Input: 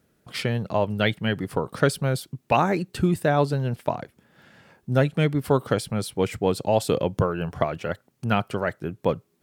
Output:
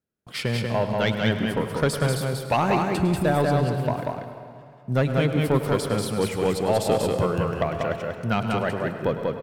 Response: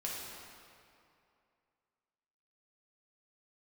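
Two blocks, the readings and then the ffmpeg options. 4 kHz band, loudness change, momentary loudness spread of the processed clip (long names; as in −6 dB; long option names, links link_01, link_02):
+1.5 dB, +1.0 dB, 8 LU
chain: -filter_complex "[0:a]agate=range=-22dB:threshold=-50dB:ratio=16:detection=peak,asoftclip=type=tanh:threshold=-13dB,aecho=1:1:189:0.708,asplit=2[link_01][link_02];[1:a]atrim=start_sample=2205,adelay=103[link_03];[link_02][link_03]afir=irnorm=-1:irlink=0,volume=-10dB[link_04];[link_01][link_04]amix=inputs=2:normalize=0"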